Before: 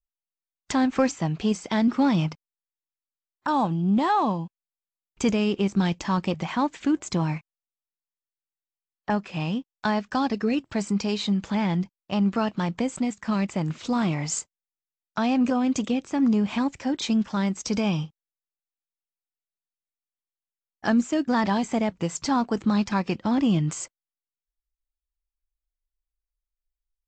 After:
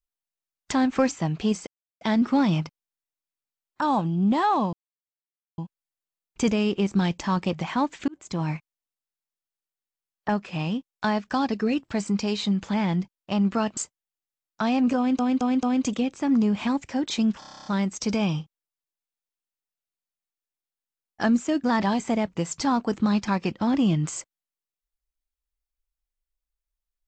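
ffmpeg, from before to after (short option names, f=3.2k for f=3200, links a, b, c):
-filter_complex "[0:a]asplit=17[a][b][c][d][e][f][g][h][i][j][k][l][m][n][o][p][q];[a]atrim=end=1.67,asetpts=PTS-STARTPTS,afade=t=out:st=1.666:d=0.004:c=hsin,apad=pad_dur=0.34[r];[b]atrim=start=1.67:end=4.39,asetpts=PTS-STARTPTS,afade=t=in:d=0.004:c=hsin,afade=t=out:st=2.716:d=0.004:c=hsin,apad=pad_dur=0.85[s];[c]atrim=start=4.39:end=6.89,asetpts=PTS-STARTPTS,afade=t=in:d=0.004:c=hsin,afade=t=out:st=2.496:d=0.004:c=hsin[t];[d]atrim=start=6.89:end=12.582,asetpts=PTS-STARTPTS,afade=t=in:d=0.44[u];[e]atrim=start=14.338:end=15.762[v];[f]atrim=start=15.538:end=15.762[w];[g]atrim=start=15.538:end=15.762[x];[h]atrim=start=15.538:end=17.332[y];[i]atrim=start=17.298:end=17.332[z];[j]atrim=start=17.298:end=17.332[aa];[k]atrim=start=17.298:end=17.332[ab];[l]atrim=start=17.298:end=17.332[ac];[m]atrim=start=17.298:end=17.332[ad];[n]atrim=start=17.298:end=17.332[ae];[o]atrim=start=17.298:end=17.332[af];[p]atrim=start=17.298:end=17.332[ag];[q]atrim=start=17.298[ah];[r][s][t][u]concat=n=4:v=0:a=1[ai];[ai][v]acrossfade=d=0.004:c1=hsin:c2=hsin[aj];[aj][w]acrossfade=d=0.004:c1=hsin:c2=hsin[ak];[ak][x]acrossfade=d=0.004:c1=hsin:c2=hsin[al];[al][y]acrossfade=d=0.004:c1=hsin:c2=hsin[am];[am][z]acrossfade=d=0.004:c1=hsin:c2=hsin[an];[an][aa]acrossfade=d=0.004:c1=hsin:c2=hsin[ao];[ao][ab]acrossfade=d=0.004:c1=hsin:c2=hsin[ap];[ap][ac]acrossfade=d=0.004:c1=hsin:c2=hsin[aq];[aq][ad]acrossfade=d=0.004:c1=hsin:c2=hsin[ar];[ar][ae]acrossfade=d=0.004:c1=hsin:c2=hsin[as];[as][af]acrossfade=d=0.004:c1=hsin:c2=hsin[at];[at][ag]acrossfade=d=0.004:c1=hsin:c2=hsin[au];[au][ah]acrossfade=d=0.004:c1=hsin:c2=hsin"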